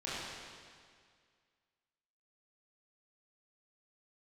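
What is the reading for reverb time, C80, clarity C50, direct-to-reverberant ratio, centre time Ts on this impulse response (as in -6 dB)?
2.0 s, -1.5 dB, -4.0 dB, -10.5 dB, 145 ms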